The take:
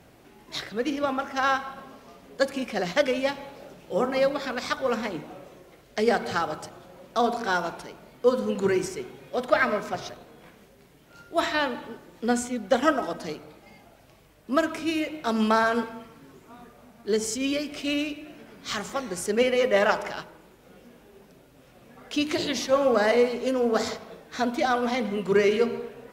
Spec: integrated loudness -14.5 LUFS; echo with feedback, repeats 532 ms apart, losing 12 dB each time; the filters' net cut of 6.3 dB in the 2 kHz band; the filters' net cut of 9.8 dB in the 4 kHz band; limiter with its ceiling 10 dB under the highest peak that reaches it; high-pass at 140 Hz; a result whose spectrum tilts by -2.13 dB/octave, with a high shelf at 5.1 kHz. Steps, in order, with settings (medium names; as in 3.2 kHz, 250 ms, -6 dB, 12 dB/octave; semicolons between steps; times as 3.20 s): high-pass 140 Hz; peaking EQ 2 kHz -6 dB; peaking EQ 4 kHz -7 dB; treble shelf 5.1 kHz -9 dB; peak limiter -18 dBFS; feedback delay 532 ms, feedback 25%, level -12 dB; trim +15.5 dB